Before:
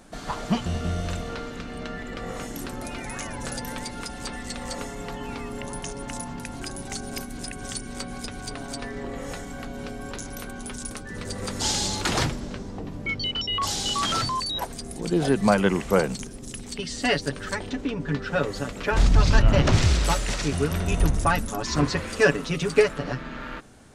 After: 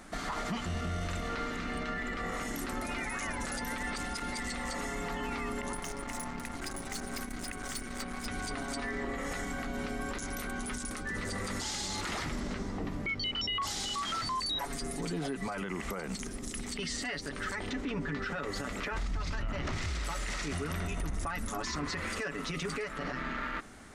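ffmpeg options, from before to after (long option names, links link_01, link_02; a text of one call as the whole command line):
ffmpeg -i in.wav -filter_complex "[0:a]asettb=1/sr,asplit=3[link_01][link_02][link_03];[link_01]atrim=end=5.754[link_04];[link_02]atrim=start=5.75:end=8.26,asetpts=PTS-STARTPTS,afade=type=in:duration=0.004:curve=qsin,afade=type=out:start_time=2.506:duration=0.004:curve=qsin,aeval=exprs='(tanh(44.7*val(0)+0.7)-tanh(0.7))/44.7':channel_layout=same[link_05];[link_03]atrim=start=8.256[link_06];[link_04][link_05]acrossfade=duration=0.004:curve1=hsin:curve2=qsin[link_07];[link_07][link_06]acrossfade=duration=0.004:curve1=qsin:curve2=hsin,asettb=1/sr,asplit=3[link_08][link_09][link_10];[link_08]atrim=end=14.554[link_11];[link_09]atrim=start=14.55:end=15.62,asetpts=PTS-STARTPTS,afade=type=in:duration=0.004:curve=qsin,afade=type=out:start_time=1.066:duration=0.004:curve=qsin,aecho=1:1:7.1:0.65,atrim=end_sample=47187[link_12];[link_10]atrim=start=15.616[link_13];[link_11][link_12]acrossfade=duration=0.004:curve1=hsin:curve2=qsin[link_14];[link_14][link_13]acrossfade=duration=0.004:curve1=qsin:curve2=hsin,asplit=3[link_15][link_16][link_17];[link_15]atrim=end=3.832[link_18];[link_16]atrim=start=3.828:end=4.402,asetpts=PTS-STARTPTS,areverse[link_19];[link_17]atrim=start=4.398[link_20];[link_18][link_19]acrossfade=duration=0.004:curve1=hsin:curve2=hsin[link_21];[link_21][link_20]acrossfade=duration=0.004:curve1=hsin:curve2=hsin,equalizer=frequency=125:width_type=o:width=0.33:gain=-12,equalizer=frequency=500:width_type=o:width=0.33:gain=-4,equalizer=frequency=1250:width_type=o:width=0.33:gain=6,equalizer=frequency=2000:width_type=o:width=0.33:gain=8,acompressor=threshold=-26dB:ratio=4,alimiter=level_in=3dB:limit=-24dB:level=0:latency=1:release=30,volume=-3dB" out.wav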